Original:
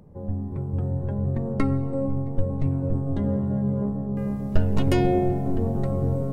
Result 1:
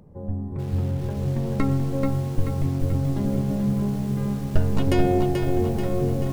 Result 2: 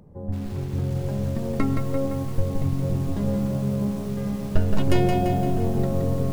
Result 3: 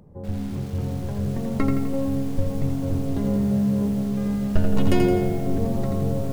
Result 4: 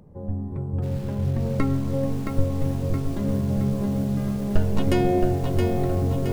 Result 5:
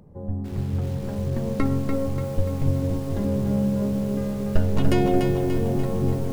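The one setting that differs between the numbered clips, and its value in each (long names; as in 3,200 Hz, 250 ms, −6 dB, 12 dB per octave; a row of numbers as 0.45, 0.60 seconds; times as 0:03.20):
feedback echo at a low word length, delay time: 434, 171, 84, 670, 291 milliseconds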